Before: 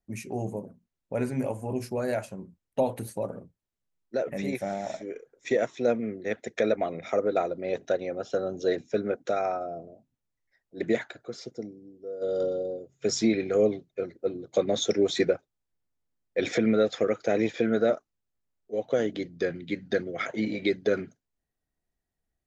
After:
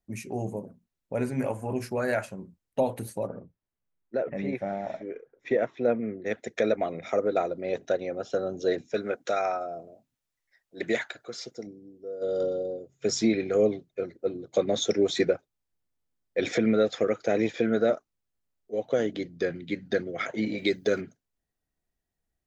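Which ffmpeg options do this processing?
-filter_complex "[0:a]asettb=1/sr,asplit=3[s0][s1][s2];[s0]atrim=end=1.384[s3];[s1]atrim=start=1.38:end=2.31,asetpts=PTS-STARTPTS,afade=t=in:d=0.004:c=qsin,afade=t=out:st=0.926:d=0.004:c=qsin,equalizer=f=1600:w=1.1:g=8[s4];[s2]atrim=start=2.306[s5];[s3][s4]acrossfade=d=0.004:c1=hsin:c2=qsin[s6];[s6][s5]acrossfade=d=0.004:c1=qsin:c2=hsin,asettb=1/sr,asplit=3[s7][s8][s9];[s7]atrim=end=3.274[s10];[s8]atrim=start=3.27:end=6.26,asetpts=PTS-STARTPTS,afade=t=in:d=0.004:c=qsin,afade=t=out:st=2.986:d=0.004:c=qsin,lowpass=2400[s11];[s9]atrim=start=6.256[s12];[s10][s11]acrossfade=d=0.004:c1=hsin:c2=qsin[s13];[s13][s12]acrossfade=d=0.004:c1=qsin:c2=hsin,asettb=1/sr,asplit=3[s14][s15][s16];[s14]atrim=end=8.944[s17];[s15]atrim=start=8.94:end=11.67,asetpts=PTS-STARTPTS,afade=t=in:d=0.004:c=qsin,afade=t=out:st=2.726:d=0.004:c=qsin,tiltshelf=f=640:g=-5.5[s18];[s16]atrim=start=11.666[s19];[s17][s18]acrossfade=d=0.004:c1=hsin:c2=qsin[s20];[s20][s19]acrossfade=d=0.004:c1=qsin:c2=hsin,asettb=1/sr,asplit=3[s21][s22][s23];[s21]atrim=end=20.584[s24];[s22]atrim=start=20.58:end=21.01,asetpts=PTS-STARTPTS,afade=t=in:d=0.004:c=qsin,afade=t=out:st=0.426:d=0.004:c=qsin,aemphasis=mode=production:type=50fm[s25];[s23]atrim=start=21.006[s26];[s24][s25]acrossfade=d=0.004:c1=hsin:c2=qsin[s27];[s27][s26]acrossfade=d=0.004:c1=qsin:c2=hsin"

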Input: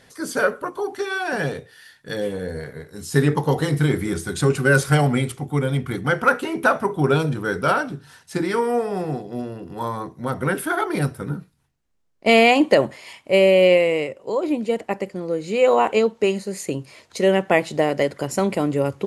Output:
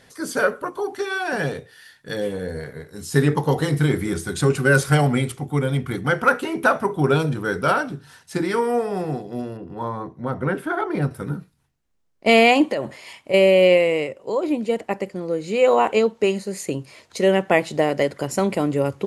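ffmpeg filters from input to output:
-filter_complex "[0:a]asettb=1/sr,asplit=3[s0][s1][s2];[s0]atrim=end=9.574[s3];[s1]atrim=start=9.57:end=11.11,asetpts=PTS-STARTPTS,afade=t=in:d=0.004:c=qsin,afade=t=out:st=1.536:d=0.004:c=qsin,lowpass=f=1500:p=1[s4];[s2]atrim=start=11.106[s5];[s3][s4]acrossfade=d=0.004:c1=hsin:c2=qsin[s6];[s6][s5]acrossfade=d=0.004:c1=qsin:c2=hsin,asettb=1/sr,asplit=3[s7][s8][s9];[s7]atrim=end=12.714[s10];[s8]atrim=start=12.71:end=13.34,asetpts=PTS-STARTPTS,afade=t=in:d=0.004:c=qsin,afade=t=out:st=0.626:d=0.004:c=qsin,acompressor=threshold=0.0891:ratio=4:attack=3.2:release=140:knee=1:detection=peak[s11];[s9]atrim=start=13.336[s12];[s10][s11]acrossfade=d=0.004:c1=hsin:c2=qsin[s13];[s13][s12]acrossfade=d=0.004:c1=qsin:c2=hsin"

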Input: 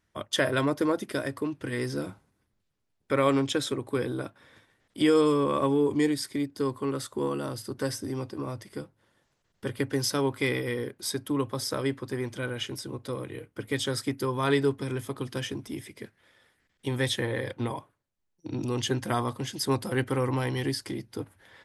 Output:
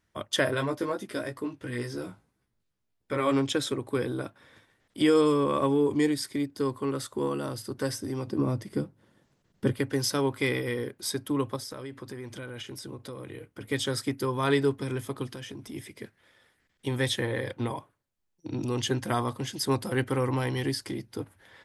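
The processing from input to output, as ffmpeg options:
-filter_complex "[0:a]asplit=3[s0][s1][s2];[s0]afade=t=out:st=0.53:d=0.02[s3];[s1]flanger=delay=15.5:depth=2.4:speed=2.9,afade=t=in:st=0.53:d=0.02,afade=t=out:st=3.31:d=0.02[s4];[s2]afade=t=in:st=3.31:d=0.02[s5];[s3][s4][s5]amix=inputs=3:normalize=0,asettb=1/sr,asplit=3[s6][s7][s8];[s6]atrim=end=8.274[s9];[s7]atrim=start=8.27:end=9.74,asetpts=PTS-STARTPTS,afade=t=in:d=0.004:c=qsin,afade=t=out:st=1.466:d=0.004:c=qsin,equalizer=f=200:w=0.57:g=10.5[s10];[s8]atrim=start=9.736[s11];[s9][s10]acrossfade=d=0.004:c1=hsin:c2=qsin[s12];[s12][s11]acrossfade=d=0.004:c1=qsin:c2=hsin,asettb=1/sr,asplit=3[s13][s14][s15];[s13]atrim=end=11.564[s16];[s14]atrim=start=11.56:end=13.61,asetpts=PTS-STARTPTS,afade=t=in:d=0.004:c=qsin,afade=t=out:st=2.046:d=0.004:c=qsin,acompressor=threshold=0.0158:ratio=6:attack=3.2:release=140:knee=1:detection=peak[s17];[s15]atrim=start=13.606[s18];[s16][s17]acrossfade=d=0.004:c1=hsin:c2=qsin[s19];[s19][s18]acrossfade=d=0.004:c1=qsin:c2=hsin,asplit=3[s20][s21][s22];[s20]afade=t=out:st=15.26:d=0.02[s23];[s21]acompressor=threshold=0.0158:ratio=12:attack=3.2:release=140:knee=1:detection=peak,afade=t=in:st=15.26:d=0.02,afade=t=out:st=15.74:d=0.02[s24];[s22]afade=t=in:st=15.74:d=0.02[s25];[s23][s24][s25]amix=inputs=3:normalize=0"

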